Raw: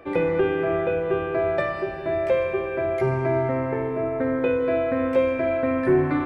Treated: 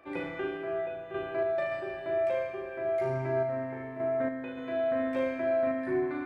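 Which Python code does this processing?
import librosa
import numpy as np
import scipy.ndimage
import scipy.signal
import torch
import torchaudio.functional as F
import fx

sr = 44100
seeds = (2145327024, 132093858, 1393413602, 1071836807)

y = fx.peak_eq(x, sr, hz=470.0, db=-11.0, octaves=0.29)
y = fx.room_flutter(y, sr, wall_m=6.5, rt60_s=0.68)
y = fx.tremolo_random(y, sr, seeds[0], hz=3.5, depth_pct=55)
y = fx.low_shelf(y, sr, hz=210.0, db=-10.5)
y = y * 10.0 ** (-7.0 / 20.0)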